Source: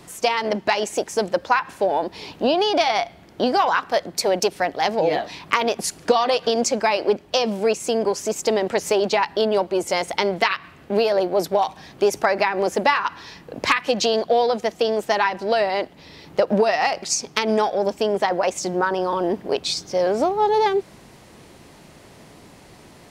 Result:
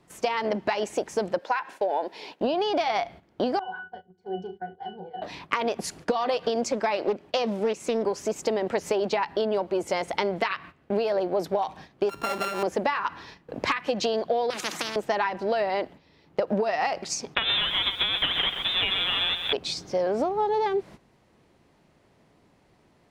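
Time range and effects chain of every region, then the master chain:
0:01.39–0:02.41: high-pass filter 400 Hz + notch filter 1,200 Hz, Q 5.9
0:03.59–0:05.22: mains-hum notches 50/100/150/200/250/300/350/400 Hz + resonances in every octave F#, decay 0.19 s + flutter between parallel walls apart 5.9 metres, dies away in 0.22 s
0:06.72–0:08.05: high-pass filter 140 Hz 6 dB per octave + highs frequency-modulated by the lows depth 0.21 ms
0:12.09–0:12.63: samples sorted by size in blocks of 32 samples + downward compressor 1.5 to 1, threshold −30 dBFS
0:14.50–0:14.96: high-pass filter 200 Hz 24 dB per octave + every bin compressed towards the loudest bin 10 to 1
0:17.35–0:19.53: each half-wave held at its own peak + voice inversion scrambler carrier 3,800 Hz + feedback echo at a low word length 129 ms, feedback 35%, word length 6 bits, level −9.5 dB
whole clip: noise gate −39 dBFS, range −13 dB; high-shelf EQ 4,500 Hz −10.5 dB; downward compressor, threshold −20 dBFS; level −1.5 dB

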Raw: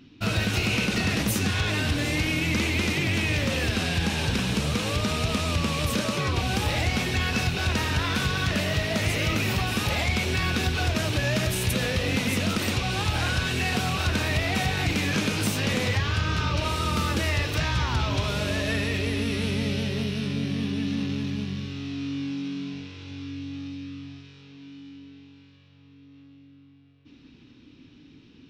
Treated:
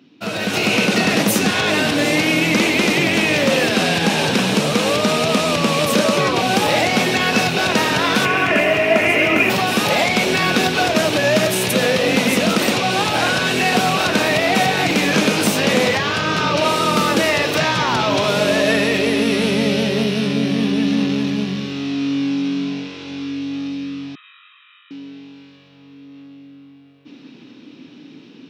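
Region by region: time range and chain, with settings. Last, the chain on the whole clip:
0:08.25–0:09.50: high shelf with overshoot 3,100 Hz −7 dB, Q 3 + comb filter 2.9 ms, depth 50%
0:24.15–0:24.91: linear-phase brick-wall band-pass 1,000–3,900 Hz + spectral tilt −3.5 dB per octave + comb filter 1.6 ms, depth 82%
whole clip: high-pass filter 160 Hz 24 dB per octave; parametric band 610 Hz +6 dB 1.3 octaves; automatic gain control gain up to 10 dB

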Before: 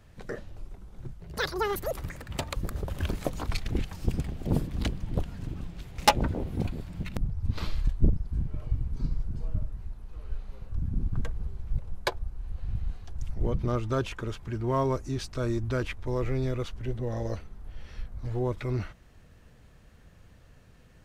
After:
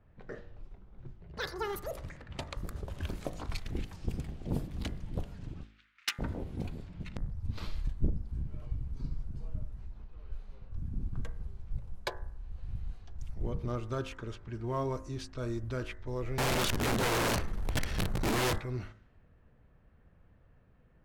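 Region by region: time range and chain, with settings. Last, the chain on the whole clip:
0:05.63–0:06.19: Butterworth high-pass 1,300 Hz 48 dB per octave + gain into a clipping stage and back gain 15.5 dB
0:07.85–0:10.07: running median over 3 samples + upward compression, threshold −30 dBFS + double-tracking delay 15 ms −14 dB
0:16.38–0:18.58: leveller curve on the samples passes 5 + wrap-around overflow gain 20.5 dB
whole clip: low-pass that shuts in the quiet parts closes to 1,500 Hz, open at −26.5 dBFS; hum removal 52.65 Hz, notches 40; level −6.5 dB

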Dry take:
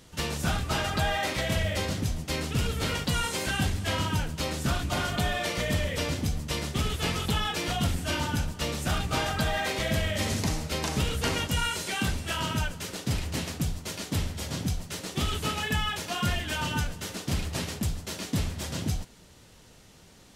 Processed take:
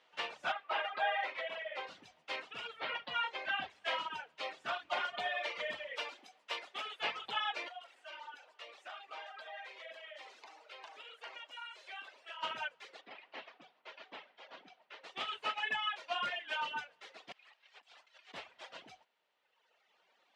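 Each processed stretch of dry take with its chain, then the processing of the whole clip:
0:00.52–0:01.87: high-pass filter 120 Hz + bass and treble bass −8 dB, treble −11 dB
0:02.80–0:03.70: low-pass filter 3,900 Hz + low-shelf EQ 110 Hz +7 dB
0:05.97–0:07.01: high-pass filter 300 Hz + high-shelf EQ 10,000 Hz +11 dB
0:07.68–0:12.43: high-pass filter 330 Hz 24 dB per octave + downward compressor 2.5 to 1, threshold −38 dBFS + high-shelf EQ 9,900 Hz +5 dB
0:13.01–0:15.04: high-pass filter 190 Hz 24 dB per octave + high-frequency loss of the air 160 metres
0:17.32–0:18.34: high-pass filter 1,200 Hz 6 dB per octave + high-shelf EQ 10,000 Hz −6 dB + compressor whose output falls as the input rises −47 dBFS
whole clip: reverb reduction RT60 2 s; Chebyshev band-pass filter 680–2,900 Hz, order 2; expander for the loud parts 1.5 to 1, over −45 dBFS

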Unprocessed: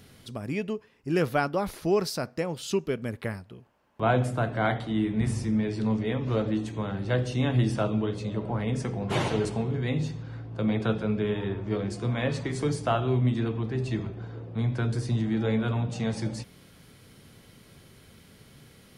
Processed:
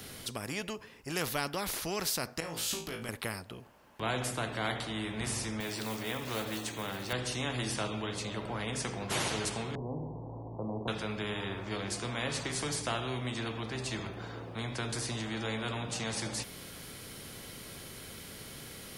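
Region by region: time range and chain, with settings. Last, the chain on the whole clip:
0:02.40–0:03.09: downward compressor, threshold −33 dBFS + flutter between parallel walls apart 3.1 metres, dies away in 0.27 s
0:05.60–0:07.13: high-pass filter 200 Hz 6 dB per octave + floating-point word with a short mantissa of 4 bits
0:09.75–0:10.88: converter with a step at zero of −44 dBFS + Butterworth low-pass 980 Hz 72 dB per octave
whole clip: high-shelf EQ 5,500 Hz +6.5 dB; every bin compressed towards the loudest bin 2 to 1; level −7 dB

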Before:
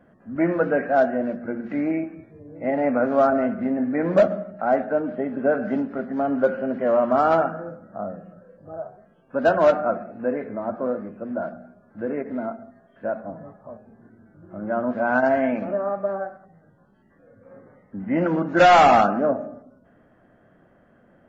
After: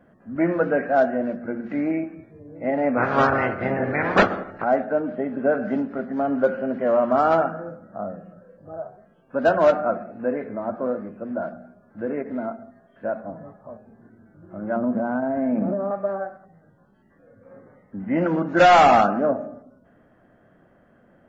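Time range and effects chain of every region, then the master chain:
0:02.97–0:04.63: ceiling on every frequency bin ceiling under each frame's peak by 24 dB + low-pass filter 5,200 Hz
0:14.76–0:15.91: low-pass filter 1,300 Hz + downward compressor, threshold −24 dBFS + parametric band 190 Hz +9.5 dB 1.8 octaves
whole clip: no processing

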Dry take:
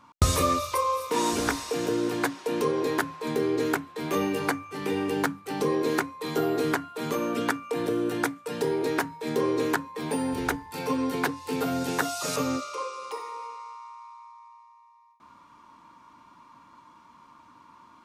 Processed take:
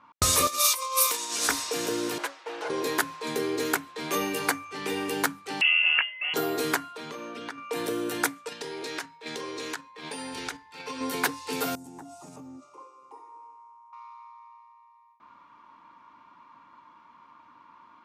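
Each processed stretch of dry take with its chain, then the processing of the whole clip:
0:00.47–0:01.49: spectral tilt +3 dB per octave + compressor whose output falls as the input rises −30 dBFS, ratio −0.5 + double-tracking delay 17 ms −11 dB
0:02.18–0:02.70: lower of the sound and its delayed copy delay 6.1 ms + high-pass filter 530 Hz + high-shelf EQ 2,200 Hz −10 dB
0:05.61–0:06.34: high-frequency loss of the air 150 metres + voice inversion scrambler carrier 3,100 Hz
0:06.93–0:07.58: downward compressor 4 to 1, threshold −34 dBFS + notch filter 7,300 Hz, Q 13
0:08.49–0:11.01: noise gate −33 dBFS, range −7 dB + tilt shelving filter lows −4.5 dB, about 1,500 Hz + downward compressor, threshold −30 dBFS
0:11.75–0:13.93: drawn EQ curve 340 Hz 0 dB, 490 Hz −19 dB, 830 Hz −3 dB, 1,300 Hz −22 dB, 4,100 Hz −26 dB, 8,100 Hz −5 dB + downward compressor 12 to 1, threshold −36 dBFS
whole clip: low-pass that shuts in the quiet parts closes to 2,100 Hz, open at −25 dBFS; spectral tilt +2.5 dB per octave

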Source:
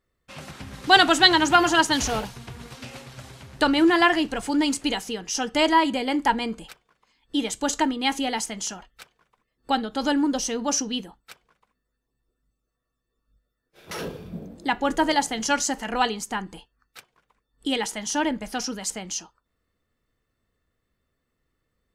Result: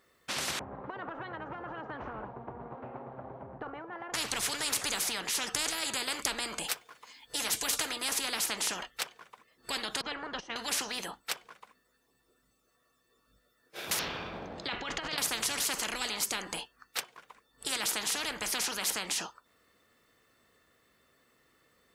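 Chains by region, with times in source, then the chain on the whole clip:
0:00.59–0:04.14: transistor ladder low-pass 980 Hz, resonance 30% + downward compressor, threshold −30 dBFS
0:06.63–0:08.09: high-shelf EQ 6,200 Hz +6.5 dB + notch comb filter 190 Hz
0:10.01–0:10.56: low-pass filter 1,400 Hz + noise gate −31 dBFS, range −16 dB
0:13.99–0:15.18: high-frequency loss of the air 220 metres + compressor whose output falls as the input rises −28 dBFS
whole clip: high-pass filter 470 Hz 6 dB per octave; every bin compressed towards the loudest bin 10 to 1

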